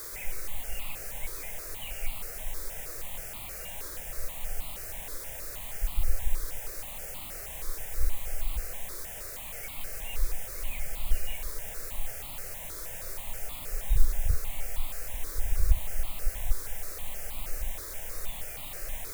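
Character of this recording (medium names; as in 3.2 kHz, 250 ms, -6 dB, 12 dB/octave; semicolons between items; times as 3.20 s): a quantiser's noise floor 6-bit, dither triangular; notches that jump at a steady rate 6.3 Hz 770–1600 Hz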